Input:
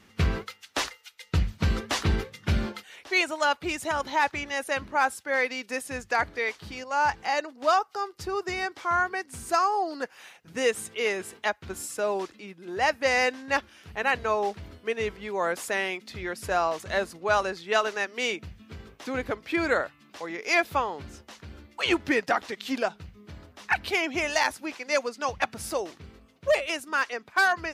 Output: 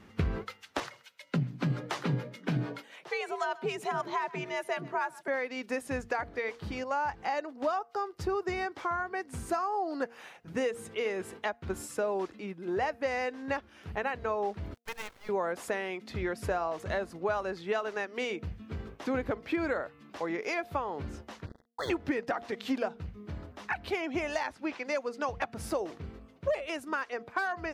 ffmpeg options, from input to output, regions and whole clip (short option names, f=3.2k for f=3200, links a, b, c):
-filter_complex "[0:a]asettb=1/sr,asplit=3[a][b][c];[a]atrim=end=0.804[d];[b]atrim=start=0.8:end=5.28,asetpts=PTS-STARTPTS,afade=t=in:d=0.004:c=qsin,afade=t=out:st=4.476:d=0.004:c=qsin,aecho=1:1:129:0.0708,atrim=end_sample=197568,acrossover=split=620[e][f];[e]aeval=exprs='val(0)*(1-0.5/2+0.5/2*cos(2*PI*6.7*n/s))':c=same[g];[f]aeval=exprs='val(0)*(1-0.5/2-0.5/2*cos(2*PI*6.7*n/s))':c=same[h];[g][h]amix=inputs=2:normalize=0,afreqshift=78[i];[c]atrim=start=5.276[j];[d][i]acrossfade=d=0.004:c1=hsin:c2=qsin[k];[k][j]acrossfade=d=0.004:c1=qsin:c2=hsin,asettb=1/sr,asplit=3[l][m][n];[l]atrim=end=14.744[o];[m]atrim=start=14.74:end=15.29,asetpts=PTS-STARTPTS,afade=t=in:d=0.004:c=qsin,afade=t=out:st=0.546:d=0.004:c=qsin,aeval=exprs='if(lt(val(0),0),0.447*val(0),val(0))':c=same,highpass=1.1k,acrusher=bits=6:dc=4:mix=0:aa=0.000001[p];[n]atrim=start=15.286[q];[o][p]acrossfade=d=0.004:c1=hsin:c2=qsin[r];[r][q]acrossfade=d=0.004:c1=qsin:c2=hsin,asettb=1/sr,asplit=3[s][t][u];[s]atrim=end=21.464[v];[t]atrim=start=21.46:end=21.9,asetpts=PTS-STARTPTS,afade=t=in:d=0.004:c=qsin,afade=t=out:st=0.436:d=0.004:c=qsin,aeval=exprs='sgn(val(0))*max(abs(val(0))-0.00891,0)':c=same,asuperstop=centerf=2600:order=20:qfactor=2[w];[u]atrim=start=21.896[x];[v][w]acrossfade=d=0.004:c1=hsin:c2=qsin[y];[y][x]acrossfade=d=0.004:c1=qsin:c2=hsin,asettb=1/sr,asplit=3[z][aa][ab];[z]atrim=end=24.434[ac];[aa]atrim=start=24.43:end=24.85,asetpts=PTS-STARTPTS,afade=t=in:d=0.004:c=qsin,afade=t=out:st=0.416:d=0.004:c=qsin,lowpass=3.3k,aemphasis=mode=production:type=75fm[ad];[ab]atrim=start=24.846[ae];[ac][ad]acrossfade=d=0.004:c1=hsin:c2=qsin[af];[af][ae]acrossfade=d=0.004:c1=qsin:c2=hsin,acompressor=threshold=-31dB:ratio=6,highshelf=f=2.1k:g=-12,bandreject=f=233.8:t=h:w=4,bandreject=f=467.6:t=h:w=4,bandreject=f=701.4:t=h:w=4,volume=4.5dB"